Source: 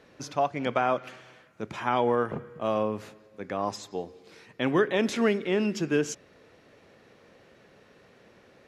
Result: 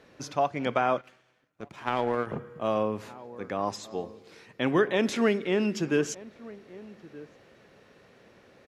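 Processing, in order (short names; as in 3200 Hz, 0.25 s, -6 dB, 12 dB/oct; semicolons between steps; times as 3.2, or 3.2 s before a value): outdoor echo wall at 210 m, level -19 dB; 1.01–2.27 power-law curve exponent 1.4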